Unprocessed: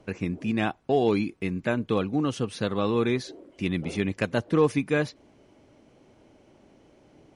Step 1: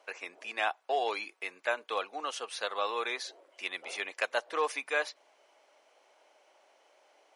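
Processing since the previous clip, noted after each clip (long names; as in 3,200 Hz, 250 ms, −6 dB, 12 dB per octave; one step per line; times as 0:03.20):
high-pass filter 620 Hz 24 dB per octave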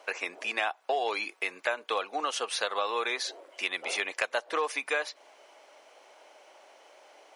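downward compressor 4 to 1, threshold −36 dBFS, peak gain reduction 10.5 dB
level +9 dB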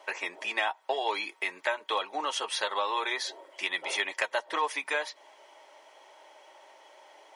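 notch comb filter 240 Hz
hollow resonant body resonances 940/1,900/3,300 Hz, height 13 dB, ringing for 50 ms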